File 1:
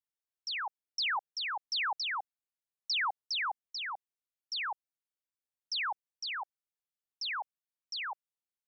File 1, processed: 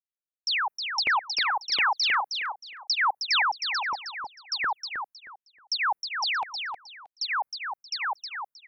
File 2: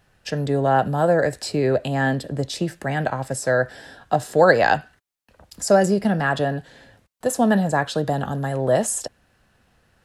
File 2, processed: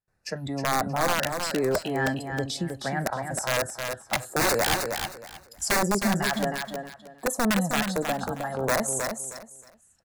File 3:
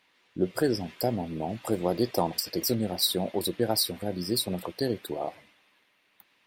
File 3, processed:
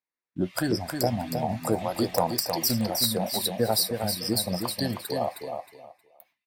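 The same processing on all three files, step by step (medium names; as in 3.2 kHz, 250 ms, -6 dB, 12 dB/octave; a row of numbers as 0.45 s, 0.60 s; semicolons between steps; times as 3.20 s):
gate with hold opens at -51 dBFS; spectral noise reduction 13 dB; in parallel at -1 dB: compression 10:1, threshold -30 dBFS; on the sum: integer overflow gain 10 dB; LFO notch square 1.4 Hz 450–3100 Hz; saturation -8 dBFS; on a send: feedback delay 314 ms, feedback 23%, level -6 dB; on the sum: normalise loudness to -27 LUFS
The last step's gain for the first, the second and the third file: +4.5 dB, -5.5 dB, +0.5 dB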